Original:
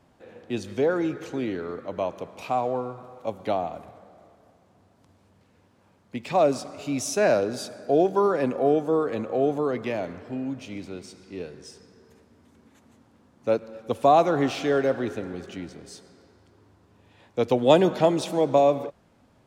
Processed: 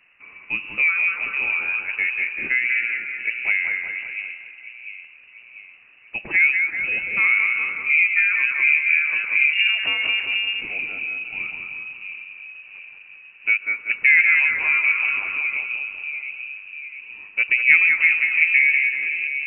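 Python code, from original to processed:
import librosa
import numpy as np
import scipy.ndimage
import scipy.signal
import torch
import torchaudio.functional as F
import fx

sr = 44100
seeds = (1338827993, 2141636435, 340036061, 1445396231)

p1 = fx.rider(x, sr, range_db=3, speed_s=2.0)
p2 = x + (p1 * 10.0 ** (-1.0 / 20.0))
p3 = fx.wow_flutter(p2, sr, seeds[0], rate_hz=2.1, depth_cents=17.0)
p4 = fx.level_steps(p3, sr, step_db=16, at=(15.38, 15.88))
p5 = p4 + fx.echo_split(p4, sr, split_hz=470.0, low_ms=694, high_ms=191, feedback_pct=52, wet_db=-4.0, dry=0)
p6 = fx.lpc_monotone(p5, sr, seeds[1], pitch_hz=210.0, order=8, at=(9.53, 10.62))
p7 = fx.env_lowpass_down(p6, sr, base_hz=1200.0, full_db=-13.0)
p8 = fx.freq_invert(p7, sr, carrier_hz=2800)
y = p8 * 10.0 ** (-3.0 / 20.0)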